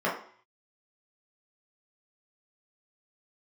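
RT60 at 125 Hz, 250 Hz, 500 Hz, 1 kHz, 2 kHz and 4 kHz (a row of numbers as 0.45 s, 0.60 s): 0.40 s, 0.50 s, 0.50 s, 0.55 s, 0.55 s, 0.55 s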